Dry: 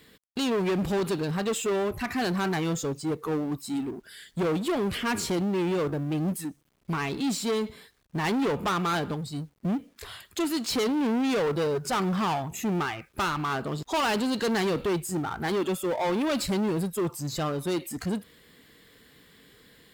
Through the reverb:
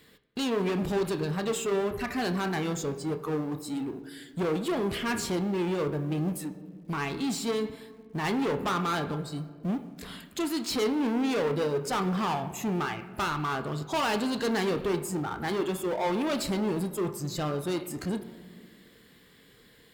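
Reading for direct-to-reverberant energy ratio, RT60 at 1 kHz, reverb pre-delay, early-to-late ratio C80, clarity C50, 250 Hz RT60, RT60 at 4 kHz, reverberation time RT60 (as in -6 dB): 7.5 dB, 1.5 s, 26 ms, 14.0 dB, 12.5 dB, 2.5 s, 0.95 s, 1.9 s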